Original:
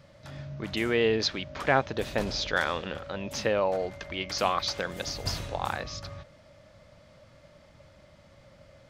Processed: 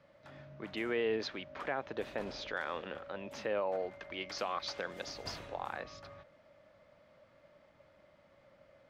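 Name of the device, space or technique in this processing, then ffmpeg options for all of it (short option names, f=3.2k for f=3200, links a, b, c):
DJ mixer with the lows and highs turned down: -filter_complex "[0:a]acrossover=split=220 3000:gain=0.251 1 0.251[a][b][c];[a][b][c]amix=inputs=3:normalize=0,alimiter=limit=-18.5dB:level=0:latency=1:release=78,asettb=1/sr,asplit=3[d][e][f];[d]atrim=end=4.104[g];[e]atrim=start=4.1:end=5.36,asetpts=PTS-STARTPTS,afade=t=in:d=0.004:c=qsin,afade=t=out:st=1.256:d=0.004:c=qsin,equalizer=f=5.3k:w=1.1:g=5.5[h];[f]atrim=start=5.356[i];[g][h]acrossfade=d=0.004:c1=hsin:c2=qsin[j];[j][i]acrossfade=d=0.004:c1=qsin:c2=hsin,volume=-6dB"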